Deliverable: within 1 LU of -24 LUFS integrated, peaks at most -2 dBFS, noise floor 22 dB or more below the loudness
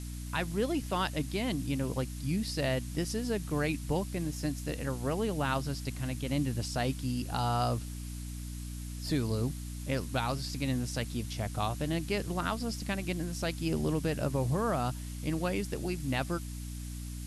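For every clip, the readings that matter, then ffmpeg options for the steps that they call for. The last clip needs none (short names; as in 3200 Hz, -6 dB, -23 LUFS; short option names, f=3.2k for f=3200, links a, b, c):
hum 60 Hz; harmonics up to 300 Hz; hum level -37 dBFS; noise floor -40 dBFS; noise floor target -56 dBFS; loudness -33.5 LUFS; peak -17.5 dBFS; loudness target -24.0 LUFS
-> -af "bandreject=f=60:t=h:w=6,bandreject=f=120:t=h:w=6,bandreject=f=180:t=h:w=6,bandreject=f=240:t=h:w=6,bandreject=f=300:t=h:w=6"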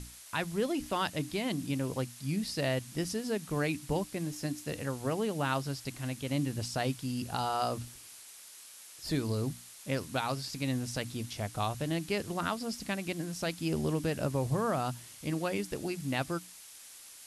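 hum none; noise floor -51 dBFS; noise floor target -56 dBFS
-> -af "afftdn=nr=6:nf=-51"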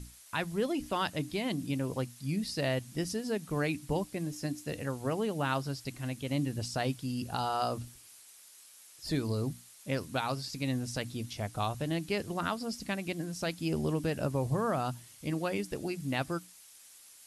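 noise floor -56 dBFS; noise floor target -57 dBFS
-> -af "afftdn=nr=6:nf=-56"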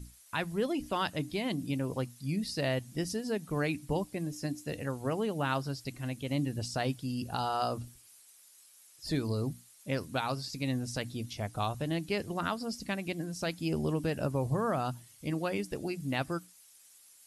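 noise floor -59 dBFS; loudness -34.5 LUFS; peak -17.5 dBFS; loudness target -24.0 LUFS
-> -af "volume=10.5dB"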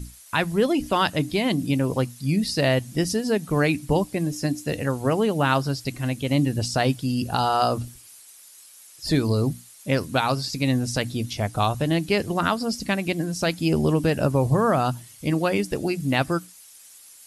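loudness -24.0 LUFS; peak -7.0 dBFS; noise floor -49 dBFS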